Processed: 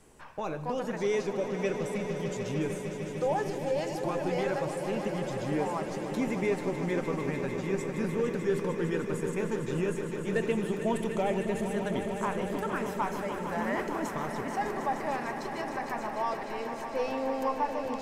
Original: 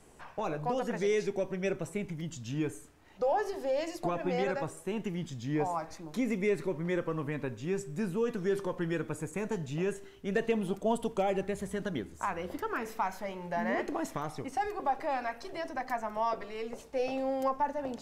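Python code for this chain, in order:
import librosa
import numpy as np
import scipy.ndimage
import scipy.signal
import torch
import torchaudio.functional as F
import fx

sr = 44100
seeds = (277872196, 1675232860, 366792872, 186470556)

p1 = fx.notch(x, sr, hz=710.0, q=12.0)
y = p1 + fx.echo_swell(p1, sr, ms=151, loudest=5, wet_db=-11.0, dry=0)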